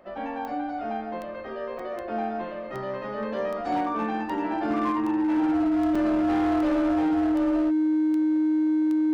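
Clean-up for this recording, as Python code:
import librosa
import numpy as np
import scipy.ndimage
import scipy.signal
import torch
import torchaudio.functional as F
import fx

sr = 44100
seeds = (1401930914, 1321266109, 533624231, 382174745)

y = fx.fix_declip(x, sr, threshold_db=-20.0)
y = fx.fix_declick_ar(y, sr, threshold=10.0)
y = fx.notch(y, sr, hz=310.0, q=30.0)
y = fx.fix_interpolate(y, sr, at_s=(1.79, 5.95), length_ms=4.4)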